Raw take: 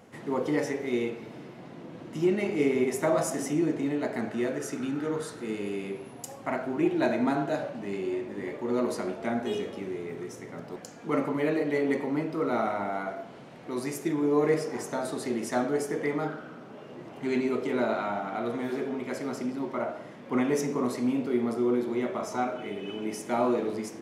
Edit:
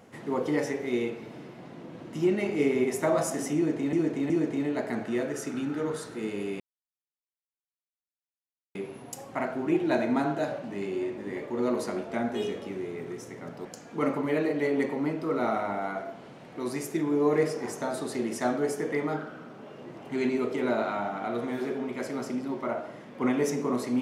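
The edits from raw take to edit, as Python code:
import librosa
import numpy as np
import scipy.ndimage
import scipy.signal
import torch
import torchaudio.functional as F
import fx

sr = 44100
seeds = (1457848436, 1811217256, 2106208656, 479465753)

y = fx.edit(x, sr, fx.repeat(start_s=3.56, length_s=0.37, count=3),
    fx.insert_silence(at_s=5.86, length_s=2.15), tone=tone)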